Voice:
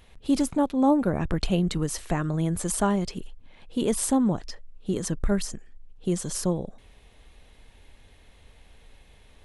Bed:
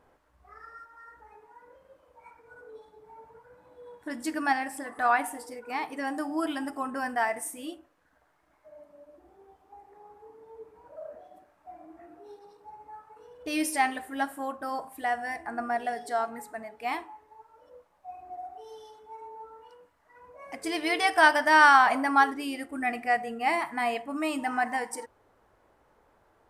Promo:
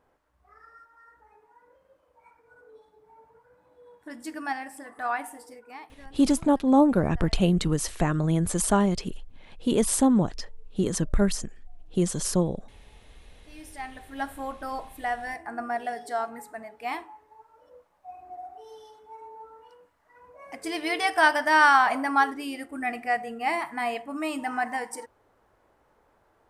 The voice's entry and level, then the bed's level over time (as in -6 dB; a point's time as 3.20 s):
5.90 s, +2.0 dB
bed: 5.53 s -5 dB
6.23 s -22 dB
13.45 s -22 dB
14.29 s -0.5 dB